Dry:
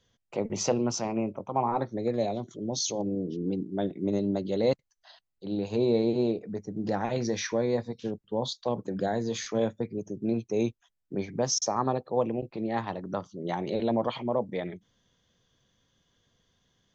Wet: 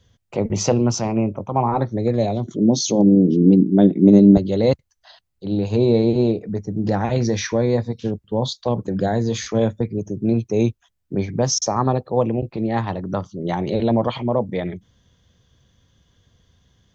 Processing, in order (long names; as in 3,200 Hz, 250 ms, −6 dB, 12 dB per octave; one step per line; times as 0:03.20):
parametric band 74 Hz +13.5 dB 1.9 octaves, from 0:02.47 220 Hz, from 0:04.37 69 Hz
level +6.5 dB